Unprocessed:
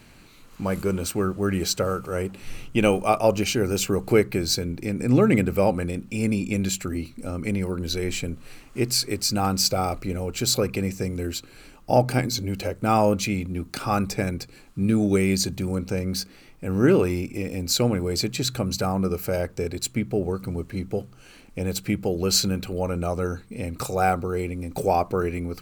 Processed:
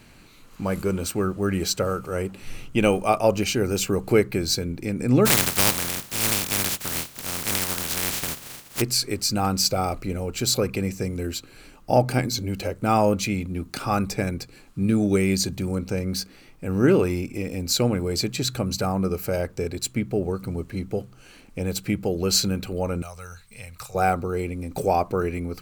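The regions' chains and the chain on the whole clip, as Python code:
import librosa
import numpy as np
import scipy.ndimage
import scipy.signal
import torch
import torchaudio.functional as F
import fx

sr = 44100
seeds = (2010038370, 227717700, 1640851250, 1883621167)

y = fx.spec_flatten(x, sr, power=0.13, at=(5.25, 8.8), fade=0.02)
y = fx.peak_eq(y, sr, hz=130.0, db=7.0, octaves=1.8, at=(5.25, 8.8), fade=0.02)
y = fx.chain(y, sr, fx.tone_stack(knobs='10-0-10'),
    fx.band_squash(depth_pct=70), at=(23.02, 23.95))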